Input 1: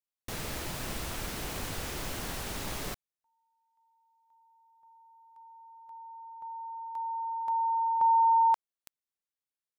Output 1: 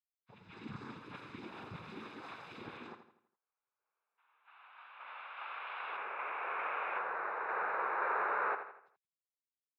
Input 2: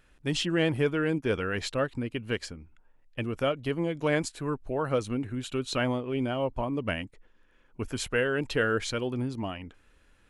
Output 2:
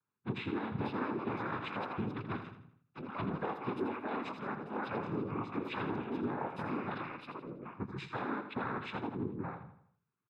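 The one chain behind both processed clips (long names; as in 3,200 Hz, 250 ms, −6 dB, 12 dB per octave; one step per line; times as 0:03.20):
hearing-aid frequency compression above 1,200 Hz 1.5 to 1
noise reduction from a noise print of the clip's start 25 dB
high-shelf EQ 2,500 Hz +10 dB
brickwall limiter −21 dBFS
downward compressor 2 to 1, threshold −44 dBFS
cochlear-implant simulation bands 6
delay with pitch and tempo change per echo 584 ms, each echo +5 semitones, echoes 2, each echo −6 dB
high-frequency loss of the air 430 metres
comb filter 0.8 ms, depth 49%
repeating echo 82 ms, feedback 45%, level −9.5 dB
one half of a high-frequency compander decoder only
level +3.5 dB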